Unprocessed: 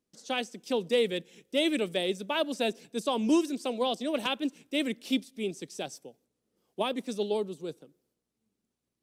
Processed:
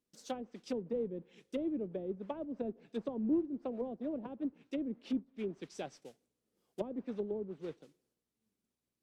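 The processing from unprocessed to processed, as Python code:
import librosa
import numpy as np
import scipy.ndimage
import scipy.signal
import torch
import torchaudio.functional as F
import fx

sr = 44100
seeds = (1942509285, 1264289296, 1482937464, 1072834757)

y = fx.mod_noise(x, sr, seeds[0], snr_db=11)
y = fx.env_lowpass_down(y, sr, base_hz=370.0, full_db=-26.0)
y = y * librosa.db_to_amplitude(-5.0)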